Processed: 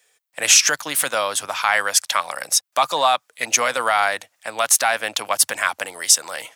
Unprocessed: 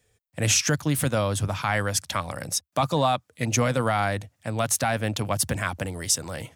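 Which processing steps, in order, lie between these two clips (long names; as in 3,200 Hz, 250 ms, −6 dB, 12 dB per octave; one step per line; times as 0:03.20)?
high-pass filter 820 Hz 12 dB per octave
level +9 dB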